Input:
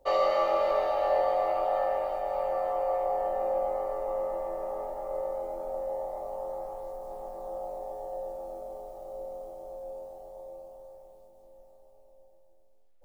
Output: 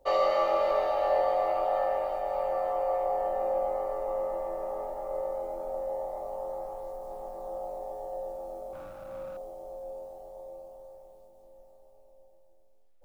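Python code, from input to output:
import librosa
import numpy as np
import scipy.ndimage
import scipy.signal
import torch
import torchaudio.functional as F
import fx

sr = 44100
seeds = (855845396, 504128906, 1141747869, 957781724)

y = fx.lower_of_two(x, sr, delay_ms=3.6, at=(8.73, 9.37))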